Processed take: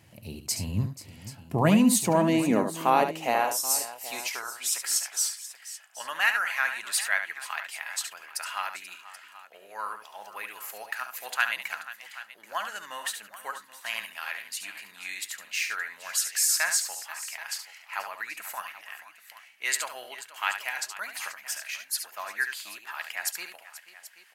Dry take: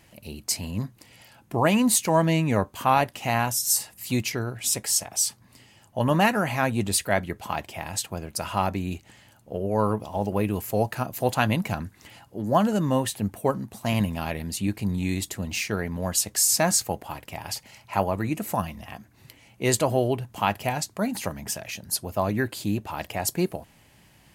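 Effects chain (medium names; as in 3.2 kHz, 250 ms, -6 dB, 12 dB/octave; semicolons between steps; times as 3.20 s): high-pass sweep 100 Hz -> 1.6 kHz, 1.09–5.06 s; on a send: multi-tap echo 71/484/781 ms -8.5/-16/-16.5 dB; on the sum: trim -3.5 dB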